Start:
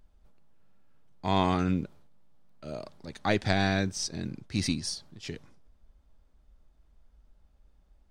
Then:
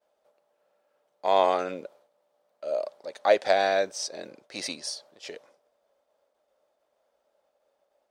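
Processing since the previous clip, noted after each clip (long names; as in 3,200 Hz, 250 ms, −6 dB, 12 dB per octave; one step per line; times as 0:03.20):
downward expander −59 dBFS
high-pass with resonance 560 Hz, resonance Q 4.9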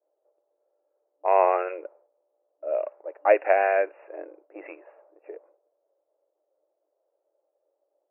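low-pass that shuts in the quiet parts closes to 480 Hz, open at −21 dBFS
brick-wall band-pass 300–2,800 Hz
level +2 dB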